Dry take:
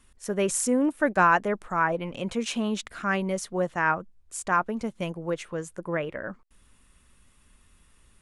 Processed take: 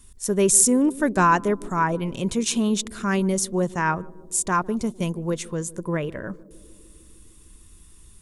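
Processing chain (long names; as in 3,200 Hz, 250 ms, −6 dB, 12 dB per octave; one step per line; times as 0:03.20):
bass and treble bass +12 dB, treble +15 dB
hollow resonant body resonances 390/990/3,600 Hz, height 7 dB, ringing for 25 ms
on a send: feedback echo with a band-pass in the loop 152 ms, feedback 80%, band-pass 310 Hz, level −19 dB
on the sum: level −2 dB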